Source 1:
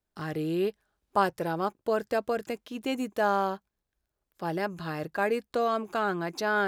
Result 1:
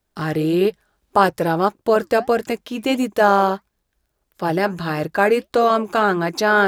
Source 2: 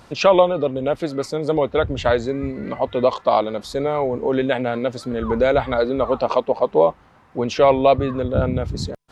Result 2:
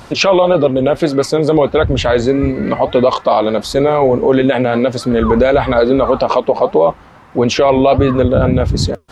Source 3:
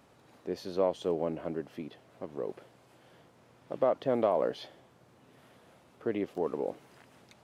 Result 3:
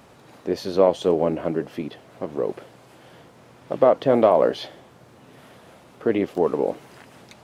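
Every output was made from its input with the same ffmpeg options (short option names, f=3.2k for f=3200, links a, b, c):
-af "flanger=delay=0.9:depth=6.1:regen=-78:speed=1.6:shape=triangular,alimiter=level_in=16.5dB:limit=-1dB:release=50:level=0:latency=1,volume=-1dB"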